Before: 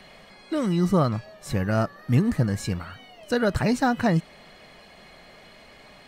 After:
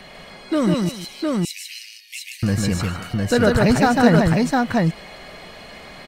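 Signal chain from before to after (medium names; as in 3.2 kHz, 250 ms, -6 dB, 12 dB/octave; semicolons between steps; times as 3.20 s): 0.74–2.43 s: steep high-pass 2.2 kHz 72 dB/octave; multi-tap echo 148/303/708 ms -3.5/-17.5/-3 dB; in parallel at -9.5 dB: hard clipper -26.5 dBFS, distortion -5 dB; on the sum: trim +4.5 dB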